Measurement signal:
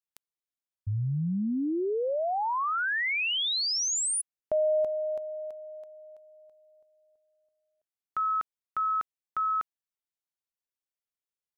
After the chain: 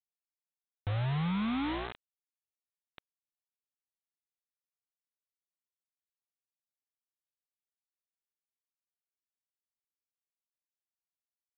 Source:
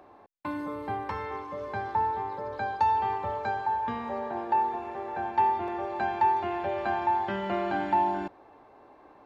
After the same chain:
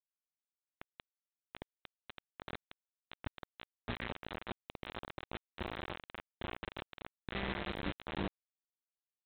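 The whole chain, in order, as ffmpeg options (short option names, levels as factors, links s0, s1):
-af "afwtdn=0.0112,lowpass=f=1900:t=q:w=9.2,acompressor=threshold=0.0141:ratio=8:attack=28:release=36:knee=6:detection=rms,alimiter=level_in=2.51:limit=0.0631:level=0:latency=1:release=275,volume=0.398,aeval=exprs='val(0)+0.00112*(sin(2*PI*60*n/s)+sin(2*PI*2*60*n/s)/2+sin(2*PI*3*60*n/s)/3+sin(2*PI*4*60*n/s)/4+sin(2*PI*5*60*n/s)/5)':c=same,asubboost=boost=11:cutoff=240,aresample=8000,acrusher=bits=4:mix=0:aa=0.000001,aresample=44100,volume=0.531"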